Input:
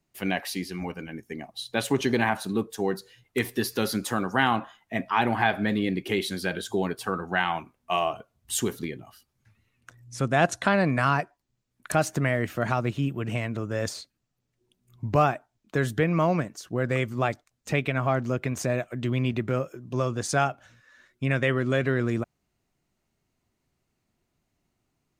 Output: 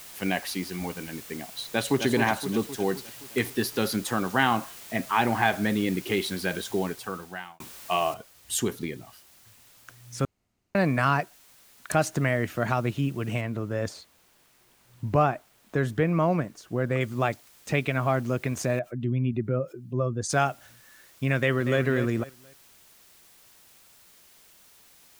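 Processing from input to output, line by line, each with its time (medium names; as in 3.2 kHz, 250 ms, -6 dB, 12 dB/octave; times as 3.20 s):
1.58–2.05 s: echo throw 260 ms, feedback 60%, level -7.5 dB
6.68–7.60 s: fade out
8.14 s: noise floor step -45 dB -56 dB
10.25–10.75 s: room tone
13.41–17.01 s: treble shelf 2.5 kHz -8 dB
18.79–20.30 s: spectral contrast enhancement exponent 1.6
21.36–21.81 s: echo throw 240 ms, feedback 30%, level -10 dB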